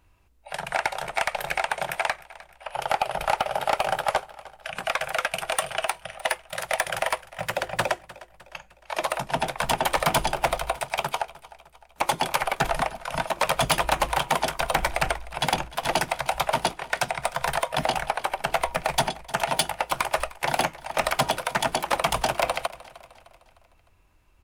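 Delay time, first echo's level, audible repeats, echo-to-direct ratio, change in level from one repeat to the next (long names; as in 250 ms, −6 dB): 305 ms, −19.5 dB, 3, −18.5 dB, −6.5 dB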